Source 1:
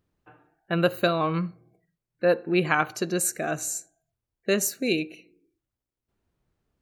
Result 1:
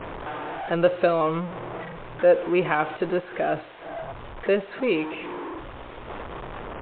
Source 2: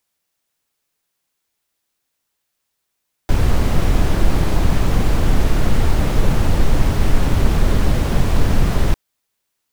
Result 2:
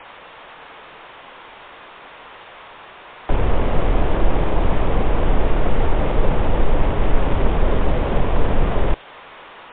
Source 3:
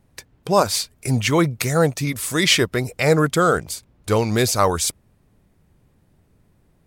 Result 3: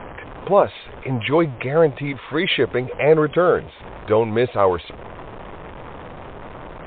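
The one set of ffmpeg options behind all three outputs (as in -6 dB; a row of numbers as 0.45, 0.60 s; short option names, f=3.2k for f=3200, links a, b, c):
-filter_complex "[0:a]aeval=exprs='val(0)+0.5*0.0376*sgn(val(0))':c=same,lowpass=3k,equalizer=f=120:w=0.72:g=-12.5,acrossover=split=800|1800[a][b][c];[b]acompressor=threshold=-43dB:ratio=6[d];[a][d][c]amix=inputs=3:normalize=0,equalizer=f=125:t=o:w=1:g=7,equalizer=f=500:t=o:w=1:g=5,equalizer=f=1k:t=o:w=1:g=7" -ar 8000 -c:a libmp3lame -b:a 40k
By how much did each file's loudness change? +0.5, -2.5, 0.0 LU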